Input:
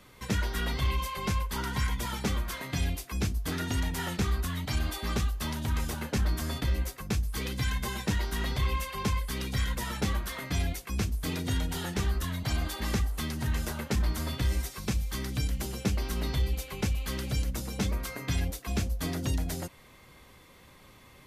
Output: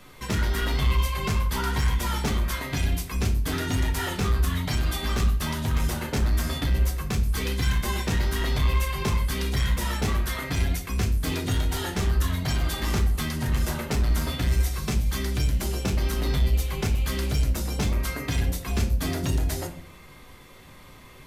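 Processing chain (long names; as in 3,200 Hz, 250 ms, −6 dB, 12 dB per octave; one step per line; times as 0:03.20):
in parallel at −4 dB: wave folding −27.5 dBFS
on the sum: rectangular room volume 49 cubic metres, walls mixed, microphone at 0.4 metres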